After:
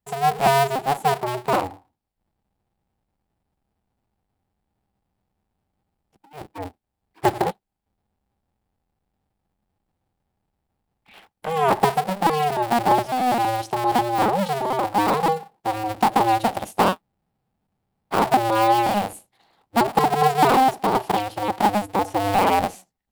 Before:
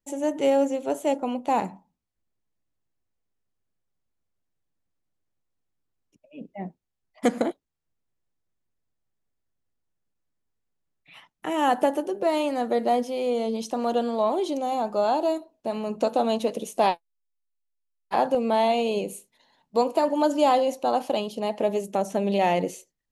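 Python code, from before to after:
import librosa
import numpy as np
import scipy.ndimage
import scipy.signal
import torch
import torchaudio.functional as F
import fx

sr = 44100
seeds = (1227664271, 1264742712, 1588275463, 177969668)

y = fx.cycle_switch(x, sr, every=2, mode='inverted')
y = fx.graphic_eq_31(y, sr, hz=(200, 800, 6300), db=(7, 11, -6))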